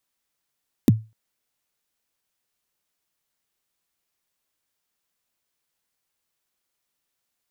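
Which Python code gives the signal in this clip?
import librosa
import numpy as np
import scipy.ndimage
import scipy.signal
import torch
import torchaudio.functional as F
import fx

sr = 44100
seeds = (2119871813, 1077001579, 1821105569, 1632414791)

y = fx.drum_kick(sr, seeds[0], length_s=0.25, level_db=-7.0, start_hz=330.0, end_hz=110.0, sweep_ms=25.0, decay_s=0.27, click=True)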